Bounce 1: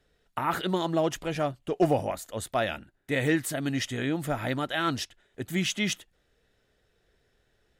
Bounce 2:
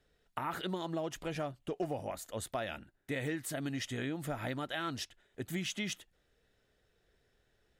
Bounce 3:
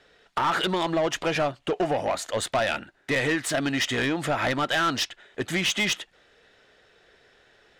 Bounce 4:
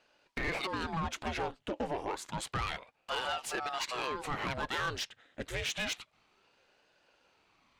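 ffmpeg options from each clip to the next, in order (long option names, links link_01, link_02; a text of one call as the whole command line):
ffmpeg -i in.wav -af "acompressor=threshold=-30dB:ratio=4,volume=-4dB" out.wav
ffmpeg -i in.wav -filter_complex "[0:a]adynamicsmooth=sensitivity=6:basefreq=6800,asplit=2[link_01][link_02];[link_02]highpass=frequency=720:poles=1,volume=20dB,asoftclip=type=tanh:threshold=-20.5dB[link_03];[link_01][link_03]amix=inputs=2:normalize=0,lowpass=frequency=8000:poles=1,volume=-6dB,volume=6dB" out.wav
ffmpeg -i in.wav -af "aeval=exprs='val(0)*sin(2*PI*580*n/s+580*0.8/0.29*sin(2*PI*0.29*n/s))':channel_layout=same,volume=-7.5dB" out.wav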